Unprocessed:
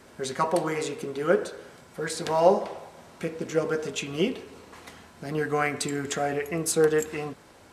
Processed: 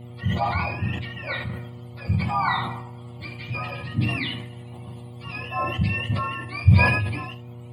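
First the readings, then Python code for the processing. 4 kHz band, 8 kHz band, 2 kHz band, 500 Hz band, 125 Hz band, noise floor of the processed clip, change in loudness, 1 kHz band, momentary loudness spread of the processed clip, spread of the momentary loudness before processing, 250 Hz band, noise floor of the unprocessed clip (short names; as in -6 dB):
+3.0 dB, under -20 dB, +6.5 dB, -12.0 dB, +15.0 dB, -40 dBFS, +2.5 dB, +2.5 dB, 19 LU, 21 LU, +1.0 dB, -53 dBFS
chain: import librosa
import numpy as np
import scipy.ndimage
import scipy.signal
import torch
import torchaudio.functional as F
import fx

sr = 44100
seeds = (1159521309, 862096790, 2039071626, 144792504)

y = fx.octave_mirror(x, sr, pivot_hz=880.0)
y = fx.fixed_phaser(y, sr, hz=1600.0, stages=6)
y = fx.dmg_buzz(y, sr, base_hz=120.0, harmonics=6, level_db=-45.0, tilt_db=-7, odd_only=False)
y = fx.room_early_taps(y, sr, ms=(41, 77), db=(-11.5, -13.5))
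y = fx.sustainer(y, sr, db_per_s=46.0)
y = F.gain(torch.from_numpy(y), 3.0).numpy()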